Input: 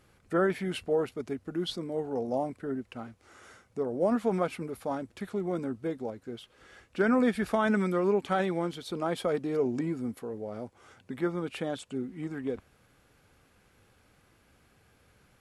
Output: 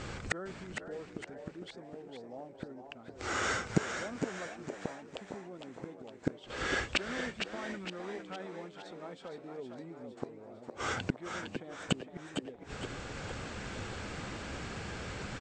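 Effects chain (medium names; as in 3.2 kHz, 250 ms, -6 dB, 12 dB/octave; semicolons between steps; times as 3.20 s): block-companded coder 7-bit; steep low-pass 8.3 kHz 96 dB/octave; in parallel at -0.5 dB: compression, threshold -38 dBFS, peak gain reduction 16 dB; on the sum: inverted gate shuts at -30 dBFS, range -34 dB; frequency-shifting echo 462 ms, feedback 48%, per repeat +110 Hz, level -8 dB; modulated delay 454 ms, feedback 36%, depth 63 cents, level -11 dB; trim +15.5 dB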